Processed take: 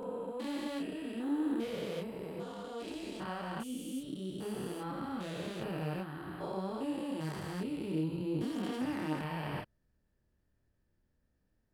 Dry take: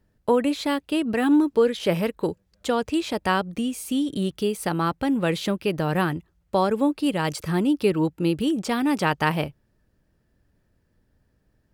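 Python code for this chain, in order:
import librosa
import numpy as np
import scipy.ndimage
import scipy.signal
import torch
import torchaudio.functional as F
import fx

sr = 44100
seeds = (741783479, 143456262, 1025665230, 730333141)

y = fx.spec_steps(x, sr, hold_ms=400)
y = fx.chorus_voices(y, sr, voices=4, hz=1.3, base_ms=29, depth_ms=3.0, mix_pct=45)
y = y * librosa.db_to_amplitude(-6.5)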